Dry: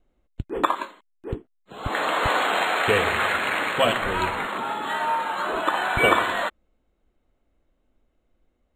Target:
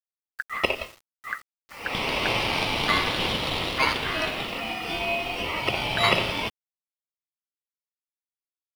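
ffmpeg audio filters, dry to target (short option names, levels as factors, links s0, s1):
-af "aeval=exprs='val(0)*sin(2*PI*1600*n/s)':c=same,acrusher=bits=7:mix=0:aa=0.000001"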